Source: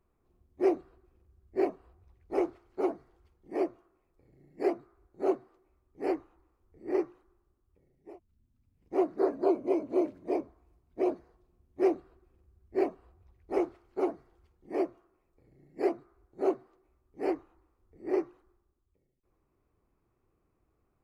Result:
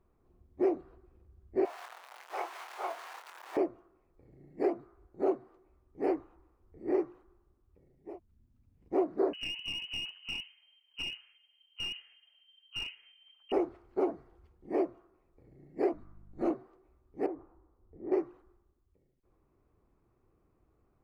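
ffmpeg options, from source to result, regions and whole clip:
-filter_complex "[0:a]asettb=1/sr,asplit=3[a][b][c];[a]atrim=end=1.654[d];[b]atrim=start=1.65:end=3.57,asetpts=PTS-STARTPTS,afade=t=in:d=0.004:c=qsin,afade=t=out:st=1.916:d=0.004:c=qsin,aeval=exprs='val(0)+0.5*0.0133*sgn(val(0))':c=same,highpass=f=790:w=0.5412,highpass=f=790:w=1.3066,asplit=2[e][f];[f]adelay=24,volume=-5dB[g];[e][g]amix=inputs=2:normalize=0,atrim=end_sample=84672[h];[c]atrim=start=3.566[i];[d][h]acrossfade=d=0.004:c1=hsin:c2=qsin[j];[j][i]acrossfade=d=0.004:c1=qsin:c2=hsin,asettb=1/sr,asplit=3[k][l][m];[k]atrim=end=9.334[n];[l]atrim=start=9.33:end=13.52,asetpts=PTS-STARTPTS,afade=t=in:d=0.004:c=qsin,afade=t=out:st=4.186:d=0.004:c=qsin,lowpass=f=2.7k:t=q:w=0.5098,lowpass=f=2.7k:t=q:w=0.6013,lowpass=f=2.7k:t=q:w=0.9,lowpass=f=2.7k:t=q:w=2.563,afreqshift=-3200,acompressor=threshold=-31dB:ratio=8:attack=3.2:release=140:knee=1:detection=peak,aeval=exprs='clip(val(0),-1,0.0188)':c=same[o];[m]atrim=start=13.516[p];[n][o]acrossfade=d=0.004:c1=hsin:c2=qsin[q];[q][p]acrossfade=d=0.004:c1=qsin:c2=hsin,asettb=1/sr,asplit=3[r][s][t];[r]atrim=end=15.934[u];[s]atrim=start=15.93:end=16.51,asetpts=PTS-STARTPTS,afade=t=in:d=0.004:c=qsin,afade=t=out:st=0.576:d=0.004:c=qsin,aeval=exprs='val(0)+0.002*(sin(2*PI*50*n/s)+sin(2*PI*2*50*n/s)/2+sin(2*PI*3*50*n/s)/3+sin(2*PI*4*50*n/s)/4+sin(2*PI*5*50*n/s)/5)':c=same,equalizer=f=480:t=o:w=1.8:g=-5.5,afreqshift=-43[v];[t]atrim=start=16.506[w];[u][v]acrossfade=d=0.004:c1=hsin:c2=qsin[x];[x][w]acrossfade=d=0.004:c1=qsin:c2=hsin,asettb=1/sr,asplit=3[y][z][aa];[y]atrim=end=17.264[ab];[z]atrim=start=17.26:end=18.12,asetpts=PTS-STARTPTS,afade=t=in:d=0.004:c=qsin,afade=t=out:st=0.856:d=0.004:c=qsin,lowpass=1.2k,acompressor=threshold=-41dB:ratio=3:attack=3.2:release=140:knee=1:detection=peak[ac];[aa]atrim=start=18.116[ad];[ab][ac]acrossfade=d=0.004:c1=hsin:c2=qsin[ae];[ae][ad]acrossfade=d=0.004:c1=qsin:c2=hsin,acompressor=threshold=-30dB:ratio=3,highshelf=f=2.6k:g=-10,volume=4dB"

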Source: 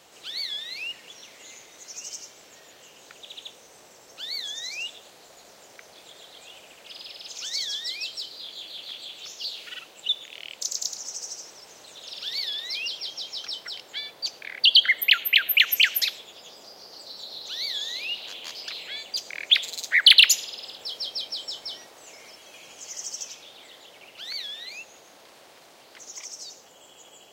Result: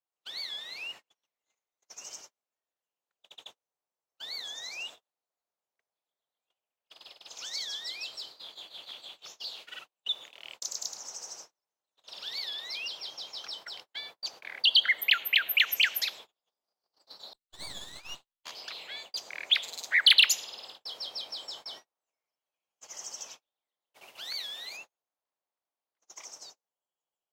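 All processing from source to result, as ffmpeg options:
-filter_complex "[0:a]asettb=1/sr,asplit=3[a][b][c];[a]atrim=end=17.334[d];[b]atrim=start=17.33:end=18.44,asetpts=PTS-STARTPTS,afade=t=in:d=0.004:c=qsin,afade=t=out:st=1.106:d=0.004:c=qsin,agate=range=-33dB:threshold=-30dB:ratio=3:release=100:detection=peak,aeval=exprs='max(val(0),0)':c=same[e];[c]atrim=start=18.436[f];[d][e]acrossfade=d=0.004:c1=hsin:c2=qsin[g];[g][f]acrossfade=d=0.004:c1=qsin:c2=hsin,asettb=1/sr,asplit=3[h][i][j];[h]atrim=end=23.944[k];[i]atrim=start=23.94:end=24.77,asetpts=PTS-STARTPTS,afade=t=in:d=0.004:c=qsin,afade=t=out:st=0.826:d=0.004:c=qsin,aemphasis=mode=production:type=cd,asplit=2[l][m];[m]adelay=16,volume=-13dB[n];[l][n]amix=inputs=2:normalize=0,atrim=end_sample=36603,acompressor=mode=upward:threshold=-33dB:ratio=2.5:attack=3.2:release=140:knee=2.83:detection=peak[o];[j]atrim=start=24.766[p];[k][o]acrossfade=d=0.004:c1=hsin:c2=qsin[q];[q][p]acrossfade=d=0.004:c1=qsin:c2=hsin,agate=range=-41dB:threshold=-40dB:ratio=16:detection=peak,equalizer=f=1k:t=o:w=1.4:g=8,volume=-7dB"

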